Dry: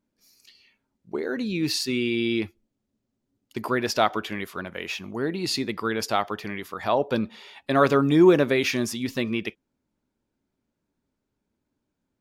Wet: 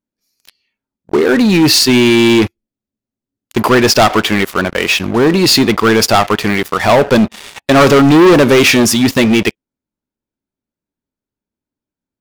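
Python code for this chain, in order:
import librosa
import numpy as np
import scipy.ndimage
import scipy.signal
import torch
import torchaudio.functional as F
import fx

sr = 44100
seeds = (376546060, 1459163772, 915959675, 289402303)

y = fx.leveller(x, sr, passes=5)
y = F.gain(torch.from_numpy(y), 2.0).numpy()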